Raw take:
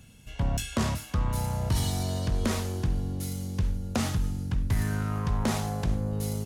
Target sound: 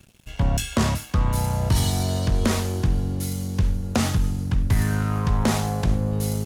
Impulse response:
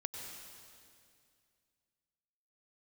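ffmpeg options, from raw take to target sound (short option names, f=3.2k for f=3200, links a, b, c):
-af "aeval=exprs='sgn(val(0))*max(abs(val(0))-0.00224,0)':c=same,volume=6.5dB"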